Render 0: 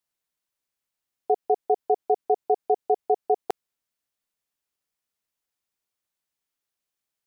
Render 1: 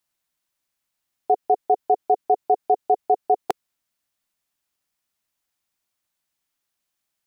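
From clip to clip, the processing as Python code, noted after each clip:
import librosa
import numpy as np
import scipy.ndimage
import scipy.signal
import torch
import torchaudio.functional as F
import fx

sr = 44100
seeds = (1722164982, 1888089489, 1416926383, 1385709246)

y = fx.peak_eq(x, sr, hz=450.0, db=-9.0, octaves=0.25)
y = F.gain(torch.from_numpy(y), 5.5).numpy()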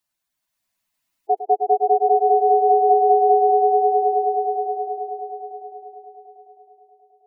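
y = fx.echo_swell(x, sr, ms=106, loudest=5, wet_db=-5.0)
y = fx.spec_gate(y, sr, threshold_db=-10, keep='strong')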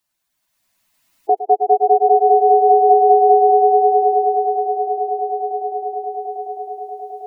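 y = fx.recorder_agc(x, sr, target_db=-14.5, rise_db_per_s=8.3, max_gain_db=30)
y = F.gain(torch.from_numpy(y), 4.0).numpy()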